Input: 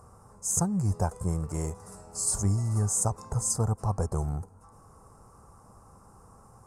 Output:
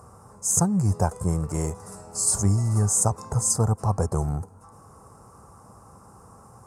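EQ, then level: HPF 71 Hz; +5.5 dB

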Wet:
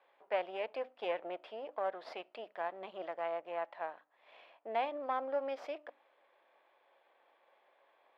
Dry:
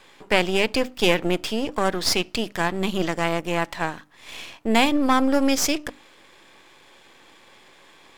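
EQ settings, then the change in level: band-pass 620 Hz, Q 3.1; air absorption 430 m; differentiator; +14.0 dB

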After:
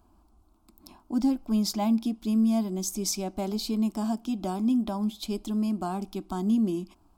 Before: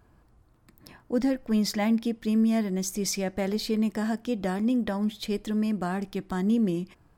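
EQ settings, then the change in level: fixed phaser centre 490 Hz, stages 6; +1.5 dB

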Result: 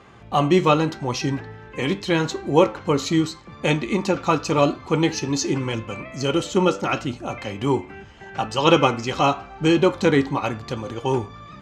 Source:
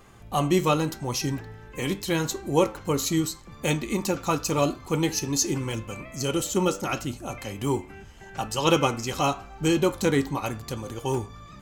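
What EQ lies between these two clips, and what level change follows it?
HPF 63 Hz; LPF 4000 Hz 12 dB/oct; low shelf 170 Hz -4 dB; +6.0 dB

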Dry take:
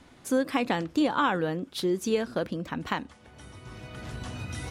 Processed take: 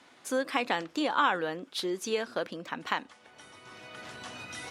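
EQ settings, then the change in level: weighting filter A; 0.0 dB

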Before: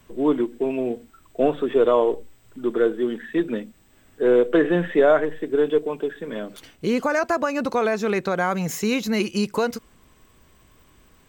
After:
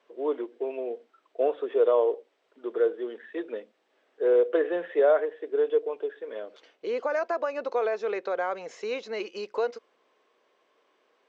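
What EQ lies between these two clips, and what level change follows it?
ladder high-pass 400 Hz, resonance 45%; LPF 6400 Hz 24 dB/oct; air absorption 92 m; 0.0 dB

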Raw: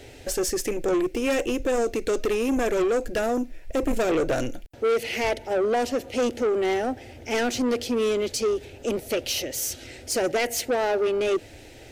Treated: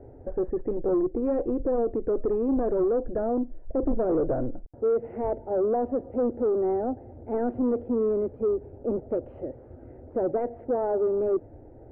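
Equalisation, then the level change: Bessel low-pass 700 Hz, order 6; 0.0 dB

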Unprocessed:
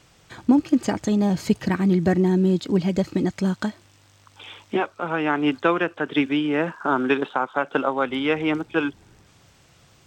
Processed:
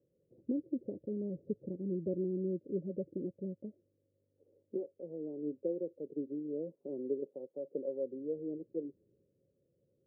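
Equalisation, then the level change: rippled Chebyshev low-pass 560 Hz, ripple 3 dB; differentiator; +13.0 dB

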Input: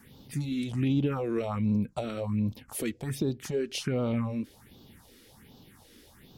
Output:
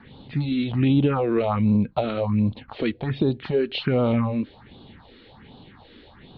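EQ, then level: Chebyshev low-pass 4200 Hz, order 6; bell 790 Hz +3.5 dB 1 oct; +8.0 dB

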